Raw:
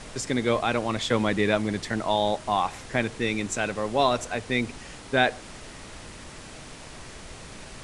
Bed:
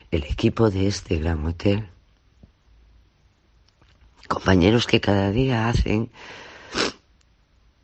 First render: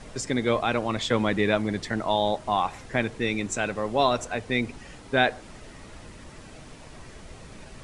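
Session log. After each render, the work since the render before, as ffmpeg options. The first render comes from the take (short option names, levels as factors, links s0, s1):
-af "afftdn=nr=7:nf=-43"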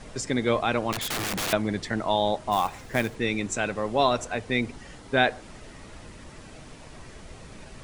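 -filter_complex "[0:a]asettb=1/sr,asplit=3[s0][s1][s2];[s0]atrim=end=0.924[s3];[s1]atrim=start=0.92:end=1.53,asetpts=PTS-STARTPTS,afade=t=in:d=0.004:c=qsin,afade=t=out:st=0.606:d=0.004:c=qsin,aeval=exprs='(mod(15.8*val(0)+1,2)-1)/15.8':c=same[s4];[s2]atrim=start=1.526[s5];[s3][s4]acrossfade=d=0.004:c1=hsin:c2=qsin[s6];[s6][s5]acrossfade=d=0.004:c1=qsin:c2=hsin,asplit=3[s7][s8][s9];[s7]afade=t=out:st=2.51:d=0.02[s10];[s8]acrusher=bits=4:mode=log:mix=0:aa=0.000001,afade=t=in:st=2.51:d=0.02,afade=t=out:st=3.14:d=0.02[s11];[s9]afade=t=in:st=3.14:d=0.02[s12];[s10][s11][s12]amix=inputs=3:normalize=0,asettb=1/sr,asplit=3[s13][s14][s15];[s13]atrim=end=4.664[s16];[s14]atrim=start=4.66:end=5.09,asetpts=PTS-STARTPTS,afade=t=in:d=0.004:c=qsin,afade=t=out:st=0.426:d=0.004:c=qsin,bandreject=f=2500:w=12[s17];[s15]atrim=start=5.086[s18];[s16][s17]acrossfade=d=0.004:c1=hsin:c2=qsin[s19];[s19][s18]acrossfade=d=0.004:c1=qsin:c2=hsin"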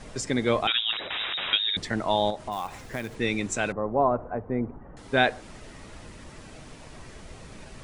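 -filter_complex "[0:a]asettb=1/sr,asplit=3[s0][s1][s2];[s0]atrim=end=0.674[s3];[s1]atrim=start=0.67:end=1.77,asetpts=PTS-STARTPTS,afade=t=in:d=0.004:c=qsin,afade=t=out:st=1.096:d=0.004:c=qsin,lowpass=f=3300:t=q:w=0.5098,lowpass=f=3300:t=q:w=0.6013,lowpass=f=3300:t=q:w=0.9,lowpass=f=3300:t=q:w=2.563,afreqshift=-3900[s4];[s2]atrim=start=1.766[s5];[s3][s4]acrossfade=d=0.004:c1=hsin:c2=qsin[s6];[s6][s5]acrossfade=d=0.004:c1=qsin:c2=hsin,asettb=1/sr,asplit=3[s7][s8][s9];[s7]atrim=end=2.304[s10];[s8]atrim=start=2.3:end=3.18,asetpts=PTS-STARTPTS,afade=t=in:d=0.004:c=qsin,afade=t=out:st=0.876:d=0.004:c=qsin,acompressor=threshold=0.0316:ratio=2.5:attack=3.2:release=140:knee=1:detection=peak[s11];[s9]atrim=start=3.176[s12];[s10][s11]acrossfade=d=0.004:c1=hsin:c2=qsin[s13];[s13][s12]acrossfade=d=0.004:c1=qsin:c2=hsin,asettb=1/sr,asplit=3[s14][s15][s16];[s14]atrim=end=3.724[s17];[s15]atrim=start=3.72:end=4.97,asetpts=PTS-STARTPTS,afade=t=in:d=0.004:c=qsin,afade=t=out:st=1.246:d=0.004:c=qsin,lowpass=f=1200:w=0.5412,lowpass=f=1200:w=1.3066[s18];[s16]atrim=start=4.966[s19];[s17][s18]acrossfade=d=0.004:c1=hsin:c2=qsin[s20];[s20][s19]acrossfade=d=0.004:c1=qsin:c2=hsin"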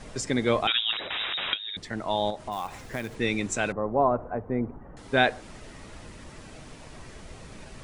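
-filter_complex "[0:a]asplit=2[s0][s1];[s0]atrim=end=1.54,asetpts=PTS-STARTPTS,afade=t=out:st=1.536:d=0.004:c=hsin:silence=0.237137[s2];[s1]atrim=start=1.54,asetpts=PTS-STARTPTS,afade=t=in:d=1.45:c=qsin:silence=0.237137[s3];[s2][s3]concat=n=2:v=0:a=1"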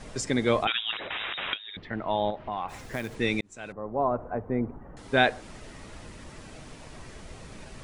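-filter_complex "[0:a]asplit=3[s0][s1][s2];[s0]afade=t=out:st=0.64:d=0.02[s3];[s1]lowpass=f=3100:w=0.5412,lowpass=f=3100:w=1.3066,afade=t=in:st=0.64:d=0.02,afade=t=out:st=2.68:d=0.02[s4];[s2]afade=t=in:st=2.68:d=0.02[s5];[s3][s4][s5]amix=inputs=3:normalize=0,asplit=2[s6][s7];[s6]atrim=end=3.41,asetpts=PTS-STARTPTS,afade=t=out:st=3.406:d=0.004:c=hsin[s8];[s7]atrim=start=3.41,asetpts=PTS-STARTPTS,afade=t=in:d=0.96[s9];[s8][s9]concat=n=2:v=0:a=1"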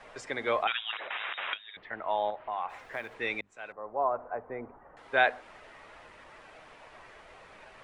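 -filter_complex "[0:a]acrossover=split=510 3000:gain=0.112 1 0.141[s0][s1][s2];[s0][s1][s2]amix=inputs=3:normalize=0,bandreject=f=50:t=h:w=6,bandreject=f=100:t=h:w=6,bandreject=f=150:t=h:w=6,bandreject=f=200:t=h:w=6,bandreject=f=250:t=h:w=6"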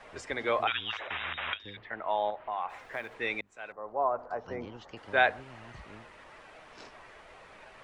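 -filter_complex "[1:a]volume=0.0335[s0];[0:a][s0]amix=inputs=2:normalize=0"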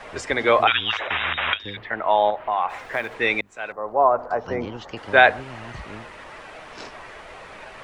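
-af "volume=3.76,alimiter=limit=0.891:level=0:latency=1"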